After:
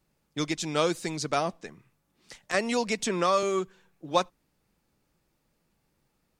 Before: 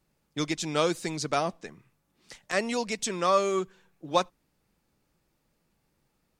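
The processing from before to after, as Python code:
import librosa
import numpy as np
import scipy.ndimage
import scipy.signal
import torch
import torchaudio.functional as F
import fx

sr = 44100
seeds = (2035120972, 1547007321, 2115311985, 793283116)

y = fx.band_squash(x, sr, depth_pct=70, at=(2.54, 3.43))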